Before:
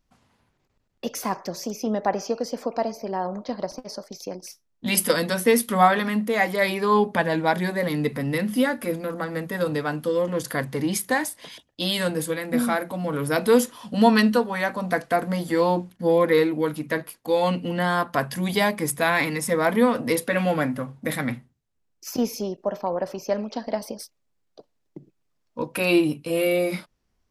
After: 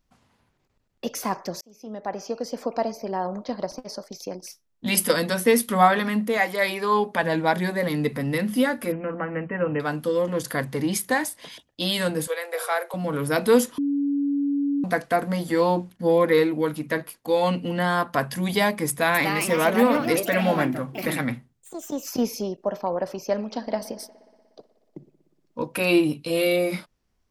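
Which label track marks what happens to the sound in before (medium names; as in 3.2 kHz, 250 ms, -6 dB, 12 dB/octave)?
1.610000	2.690000	fade in
6.370000	7.230000	bass shelf 260 Hz -10 dB
8.920000	9.800000	brick-wall FIR low-pass 3.1 kHz
12.270000	12.940000	steep high-pass 380 Hz 96 dB/octave
13.780000	14.840000	bleep 283 Hz -20.5 dBFS
18.880000	22.380000	ever faster or slower copies 264 ms, each echo +3 st, echoes 2, each echo -6 dB
23.340000	25.600000	feedback echo behind a low-pass 60 ms, feedback 80%, low-pass 2.9 kHz, level -19.5 dB
26.130000	26.560000	peaking EQ 4 kHz +9.5 dB 0.6 oct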